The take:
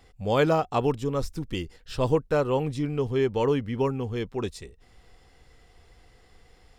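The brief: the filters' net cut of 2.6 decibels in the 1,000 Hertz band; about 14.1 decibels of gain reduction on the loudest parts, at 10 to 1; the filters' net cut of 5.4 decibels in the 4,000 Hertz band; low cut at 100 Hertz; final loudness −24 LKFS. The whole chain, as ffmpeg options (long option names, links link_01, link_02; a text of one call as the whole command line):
ffmpeg -i in.wav -af "highpass=100,equalizer=frequency=1000:width_type=o:gain=-3,equalizer=frequency=4000:width_type=o:gain=-7.5,acompressor=threshold=-33dB:ratio=10,volume=14dB" out.wav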